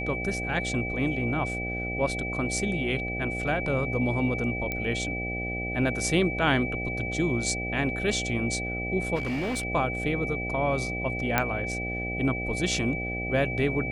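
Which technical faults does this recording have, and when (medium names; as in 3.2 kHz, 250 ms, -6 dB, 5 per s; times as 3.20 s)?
buzz 60 Hz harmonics 13 -34 dBFS
whine 2.3 kHz -32 dBFS
4.72 s: pop -16 dBFS
9.15–9.65 s: clipped -26 dBFS
11.38 s: pop -7 dBFS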